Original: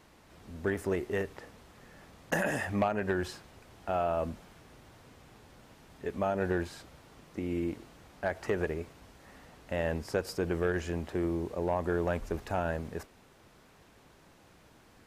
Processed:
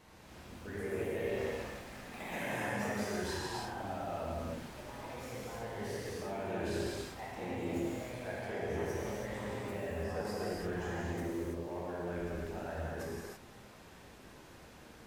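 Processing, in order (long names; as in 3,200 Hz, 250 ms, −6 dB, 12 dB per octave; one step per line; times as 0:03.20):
reversed playback
downward compressor 10 to 1, threshold −40 dBFS, peak gain reduction 17 dB
reversed playback
delay with pitch and tempo change per echo 246 ms, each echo +3 semitones, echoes 2
reverb whose tail is shaped and stops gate 360 ms flat, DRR −7 dB
level −3 dB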